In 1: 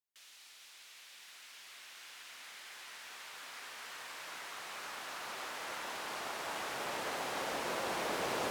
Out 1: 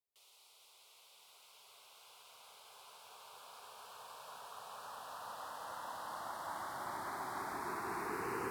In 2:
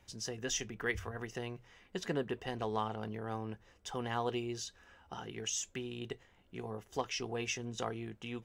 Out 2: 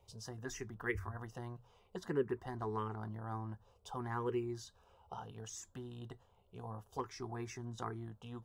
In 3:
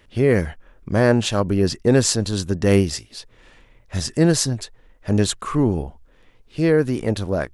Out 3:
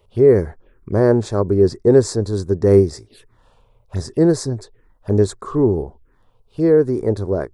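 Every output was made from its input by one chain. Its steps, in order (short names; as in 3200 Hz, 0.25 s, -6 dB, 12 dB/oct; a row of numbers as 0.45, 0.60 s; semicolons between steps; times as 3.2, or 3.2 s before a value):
envelope phaser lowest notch 280 Hz, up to 2900 Hz, full sweep at -22 dBFS; fifteen-band EQ 100 Hz +6 dB, 400 Hz +12 dB, 1000 Hz +4 dB, 6300 Hz -6 dB; gain -3.5 dB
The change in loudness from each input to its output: -4.0, -4.0, +3.0 LU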